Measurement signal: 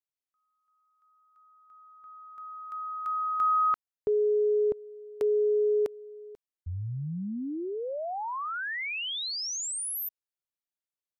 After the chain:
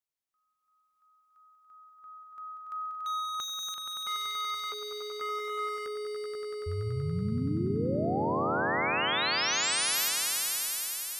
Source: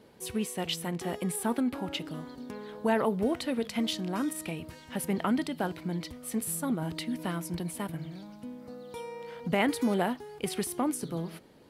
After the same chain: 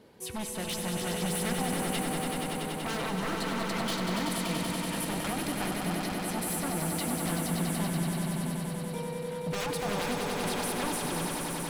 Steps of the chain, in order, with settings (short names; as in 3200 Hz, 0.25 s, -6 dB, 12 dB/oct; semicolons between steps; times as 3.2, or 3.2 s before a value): wavefolder -29.5 dBFS; swelling echo 95 ms, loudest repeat 5, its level -6 dB